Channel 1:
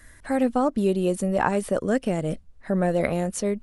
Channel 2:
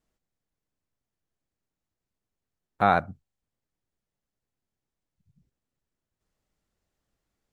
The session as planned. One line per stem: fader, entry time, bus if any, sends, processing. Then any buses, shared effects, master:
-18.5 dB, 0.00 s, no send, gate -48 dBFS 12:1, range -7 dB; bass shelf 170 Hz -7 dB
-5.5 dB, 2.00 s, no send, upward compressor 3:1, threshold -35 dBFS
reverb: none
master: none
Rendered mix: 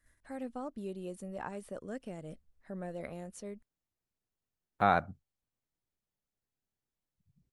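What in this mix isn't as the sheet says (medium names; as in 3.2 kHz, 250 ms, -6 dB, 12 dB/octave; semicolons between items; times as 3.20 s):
stem 1: missing bass shelf 170 Hz -7 dB; stem 2: missing upward compressor 3:1, threshold -35 dBFS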